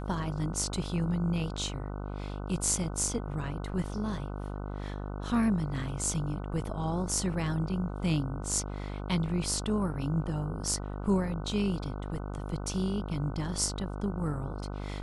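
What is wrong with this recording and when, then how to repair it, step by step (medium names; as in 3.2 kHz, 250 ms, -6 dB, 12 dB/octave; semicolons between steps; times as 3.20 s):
buzz 50 Hz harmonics 30 -37 dBFS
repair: de-hum 50 Hz, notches 30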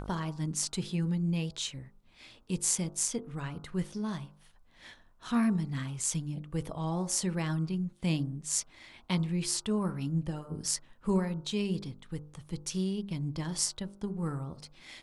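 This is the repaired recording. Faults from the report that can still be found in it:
nothing left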